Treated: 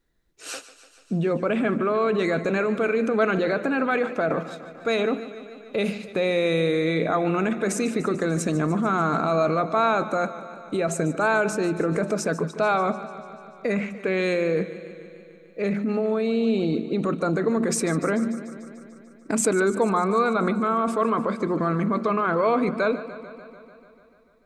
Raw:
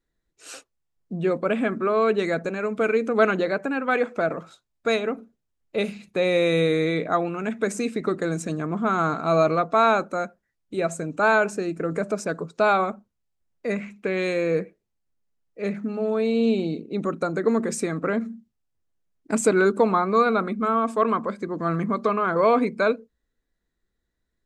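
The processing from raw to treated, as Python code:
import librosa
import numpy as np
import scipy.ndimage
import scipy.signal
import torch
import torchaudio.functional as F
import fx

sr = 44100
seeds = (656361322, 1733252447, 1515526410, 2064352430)

p1 = fx.peak_eq(x, sr, hz=7500.0, db=-3.0, octaves=0.44)
p2 = fx.over_compress(p1, sr, threshold_db=-29.0, ratio=-1.0)
p3 = p1 + (p2 * 10.0 ** (2.0 / 20.0))
p4 = fx.echo_warbled(p3, sr, ms=147, feedback_pct=71, rate_hz=2.8, cents=51, wet_db=-15.0)
y = p4 * 10.0 ** (-4.0 / 20.0)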